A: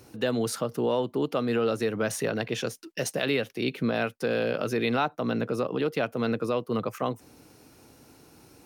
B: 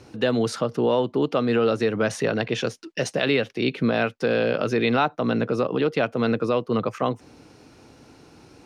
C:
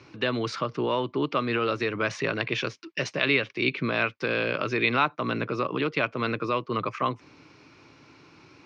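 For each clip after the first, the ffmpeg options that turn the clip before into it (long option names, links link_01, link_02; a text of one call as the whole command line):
ffmpeg -i in.wav -af "lowpass=5600,volume=5dB" out.wav
ffmpeg -i in.wav -af "highpass=110,equalizer=frequency=220:width_type=q:width=4:gain=-9,equalizer=frequency=480:width_type=q:width=4:gain=-7,equalizer=frequency=740:width_type=q:width=4:gain=-8,equalizer=frequency=1100:width_type=q:width=4:gain=6,equalizer=frequency=2300:width_type=q:width=4:gain=8,lowpass=frequency=5600:width=0.5412,lowpass=frequency=5600:width=1.3066,volume=-1.5dB" out.wav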